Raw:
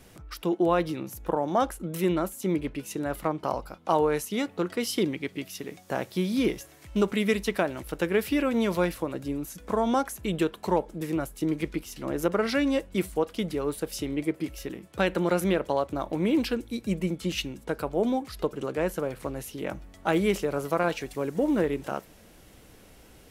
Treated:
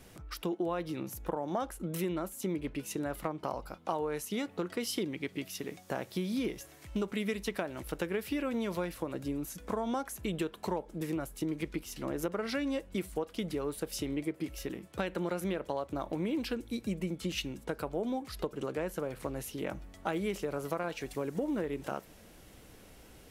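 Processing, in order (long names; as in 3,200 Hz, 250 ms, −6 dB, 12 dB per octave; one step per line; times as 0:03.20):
downward compressor 4 to 1, threshold −29 dBFS, peak gain reduction 10 dB
level −2 dB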